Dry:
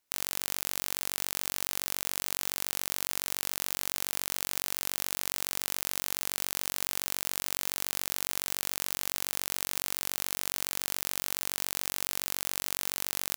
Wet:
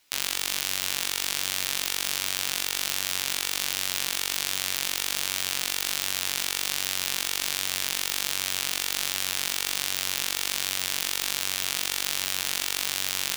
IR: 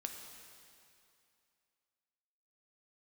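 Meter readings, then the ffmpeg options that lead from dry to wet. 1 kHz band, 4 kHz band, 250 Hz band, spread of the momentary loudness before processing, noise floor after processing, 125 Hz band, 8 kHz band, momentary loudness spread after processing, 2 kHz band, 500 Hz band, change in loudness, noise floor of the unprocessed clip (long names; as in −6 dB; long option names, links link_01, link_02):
+4.5 dB, +10.0 dB, +2.5 dB, 0 LU, −34 dBFS, +3.0 dB, +5.5 dB, 0 LU, +8.5 dB, +2.5 dB, +5.0 dB, −78 dBFS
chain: -filter_complex "[0:a]equalizer=frequency=3300:width_type=o:width=2:gain=8.5,flanger=delay=9.8:depth=9.3:regen=46:speed=1.3:shape=sinusoidal,asplit=2[link_01][link_02];[1:a]atrim=start_sample=2205[link_03];[link_02][link_03]afir=irnorm=-1:irlink=0,volume=-2dB[link_04];[link_01][link_04]amix=inputs=2:normalize=0,alimiter=level_in=12.5dB:limit=-1dB:release=50:level=0:latency=1,volume=-1dB"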